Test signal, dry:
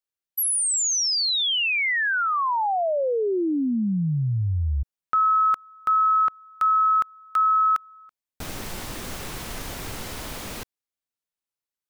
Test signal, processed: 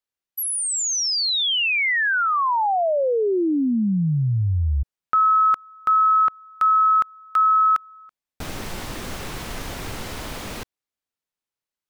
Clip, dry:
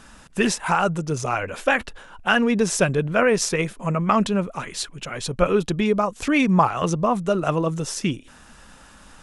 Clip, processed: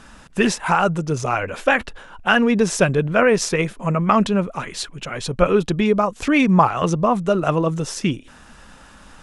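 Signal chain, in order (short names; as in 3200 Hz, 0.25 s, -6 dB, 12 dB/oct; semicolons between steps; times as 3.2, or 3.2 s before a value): high shelf 6600 Hz -6.5 dB; gain +3 dB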